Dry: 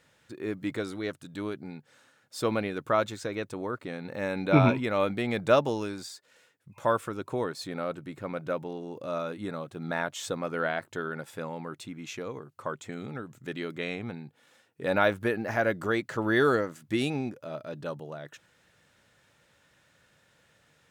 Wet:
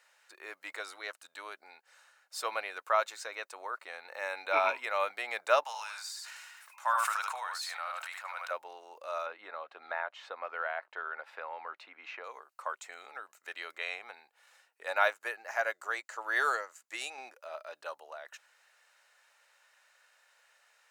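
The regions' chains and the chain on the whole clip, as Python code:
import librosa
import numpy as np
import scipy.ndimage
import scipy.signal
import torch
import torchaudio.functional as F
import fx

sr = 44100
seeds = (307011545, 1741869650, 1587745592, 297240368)

y = fx.chain(x, sr, fx.highpass(hz=800.0, slope=24),
    fx.echo_single(ms=75, db=-6.5),
    fx.sustainer(db_per_s=25.0), at=(5.63, 8.51))
y = fx.chain(y, sr, fx.air_absorb(metres=350.0),
    fx.band_squash(depth_pct=70), at=(9.26, 12.24))
y = fx.chain(y, sr, fx.peak_eq(hz=7100.0, db=9.5, octaves=0.41),
    fx.upward_expand(threshold_db=-35.0, expansion=1.5), at=(14.83, 17.18))
y = scipy.signal.sosfilt(scipy.signal.butter(4, 690.0, 'highpass', fs=sr, output='sos'), y)
y = fx.notch(y, sr, hz=3400.0, q=8.5)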